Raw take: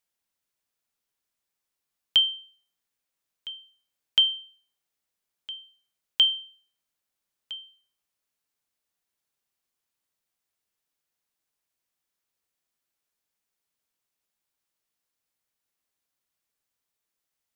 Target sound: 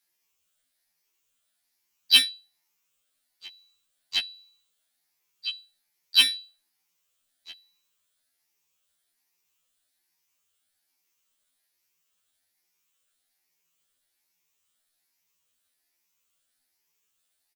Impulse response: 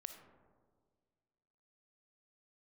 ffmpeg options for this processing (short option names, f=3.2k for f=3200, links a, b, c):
-filter_complex "[0:a]afftfilt=real='re*pow(10,14/40*sin(2*PI*(0.77*log(max(b,1)*sr/1024/100)/log(2)-(1.2)*(pts-256)/sr)))':imag='im*pow(10,14/40*sin(2*PI*(0.77*log(max(b,1)*sr/1024/100)/log(2)-(1.2)*(pts-256)/sr)))':win_size=1024:overlap=0.75,adynamicequalizer=threshold=0.00562:dfrequency=810:dqfactor=2:tfrequency=810:tqfactor=2:attack=5:release=100:ratio=0.375:range=3.5:mode=boostabove:tftype=bell,asplit=4[a][b][c][d];[b]asetrate=37084,aresample=44100,atempo=1.18921,volume=-5dB[e];[c]asetrate=55563,aresample=44100,atempo=0.793701,volume=-6dB[f];[d]asetrate=66075,aresample=44100,atempo=0.66742,volume=-7dB[g];[a][e][f][g]amix=inputs=4:normalize=0,acrossover=split=1700[h][i];[i]acontrast=63[j];[h][j]amix=inputs=2:normalize=0,afftfilt=real='re*2*eq(mod(b,4),0)':imag='im*2*eq(mod(b,4),0)':win_size=2048:overlap=0.75"